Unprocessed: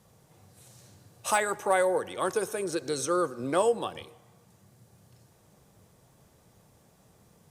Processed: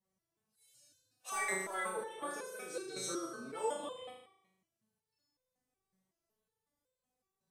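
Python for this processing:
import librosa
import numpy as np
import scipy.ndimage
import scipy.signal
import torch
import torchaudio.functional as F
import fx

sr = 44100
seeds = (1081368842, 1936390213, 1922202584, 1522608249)

y = fx.noise_reduce_blind(x, sr, reduce_db=17)
y = fx.room_flutter(y, sr, wall_m=6.4, rt60_s=0.87)
y = fx.resonator_held(y, sr, hz=5.4, low_hz=190.0, high_hz=510.0)
y = y * librosa.db_to_amplitude(2.5)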